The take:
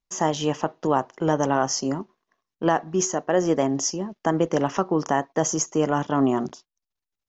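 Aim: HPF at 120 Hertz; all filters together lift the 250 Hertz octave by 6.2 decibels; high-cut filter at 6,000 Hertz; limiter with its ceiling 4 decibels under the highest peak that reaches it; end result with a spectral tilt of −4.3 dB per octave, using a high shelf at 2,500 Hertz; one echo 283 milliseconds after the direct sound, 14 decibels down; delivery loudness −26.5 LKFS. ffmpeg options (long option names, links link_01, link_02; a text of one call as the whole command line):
ffmpeg -i in.wav -af "highpass=120,lowpass=6000,equalizer=frequency=250:width_type=o:gain=8,highshelf=frequency=2500:gain=8.5,alimiter=limit=-9.5dB:level=0:latency=1,aecho=1:1:283:0.2,volume=-5.5dB" out.wav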